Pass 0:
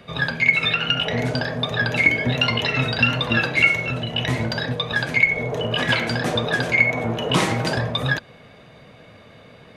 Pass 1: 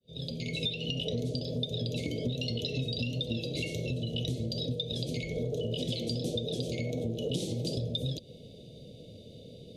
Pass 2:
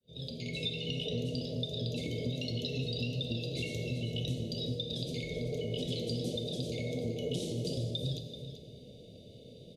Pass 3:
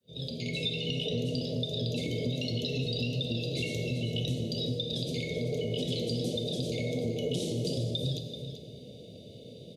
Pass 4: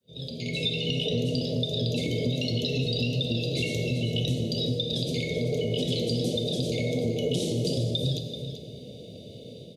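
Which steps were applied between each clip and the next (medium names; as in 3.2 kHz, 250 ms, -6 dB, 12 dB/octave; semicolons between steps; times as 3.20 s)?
fade-in on the opening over 0.62 s; Chebyshev band-stop 510–3500 Hz, order 3; compression 6:1, threshold -30 dBFS, peak gain reduction 14 dB
delay 385 ms -11.5 dB; plate-style reverb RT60 2 s, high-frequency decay 0.75×, DRR 4.5 dB; trim -4 dB
high-pass 84 Hz; in parallel at -3 dB: peak limiter -29 dBFS, peak gain reduction 7.5 dB
level rider gain up to 4.5 dB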